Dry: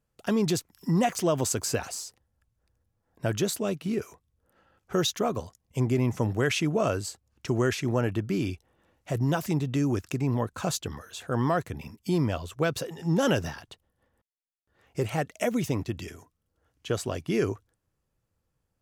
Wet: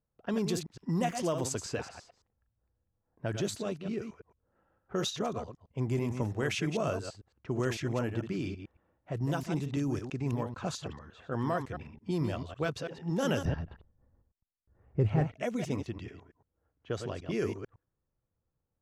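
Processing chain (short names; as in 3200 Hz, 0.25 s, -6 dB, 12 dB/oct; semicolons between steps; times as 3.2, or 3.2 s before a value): reverse delay 0.111 s, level -7 dB; low-pass opened by the level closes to 1300 Hz, open at -20 dBFS; 13.45–15.36 RIAA curve playback; gain -6.5 dB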